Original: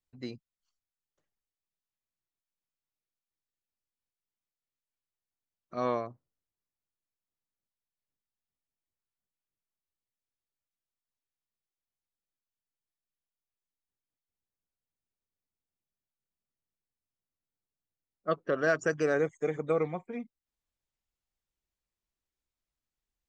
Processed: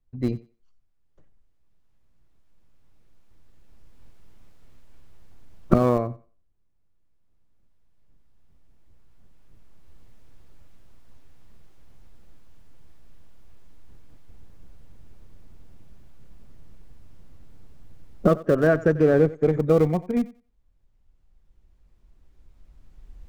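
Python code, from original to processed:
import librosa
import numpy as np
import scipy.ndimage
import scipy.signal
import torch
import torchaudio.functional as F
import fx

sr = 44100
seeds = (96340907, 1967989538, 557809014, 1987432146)

p1 = fx.recorder_agc(x, sr, target_db=-21.5, rise_db_per_s=7.3, max_gain_db=30)
p2 = fx.tilt_eq(p1, sr, slope=-4.0)
p3 = fx.schmitt(p2, sr, flips_db=-24.5)
p4 = p2 + (p3 * librosa.db_to_amplitude(-6.0))
p5 = fx.high_shelf(p4, sr, hz=5100.0, db=-11.5, at=(18.67, 19.52))
p6 = fx.echo_thinned(p5, sr, ms=91, feedback_pct=20, hz=250.0, wet_db=-18.0)
y = p6 * librosa.db_to_amplitude(4.5)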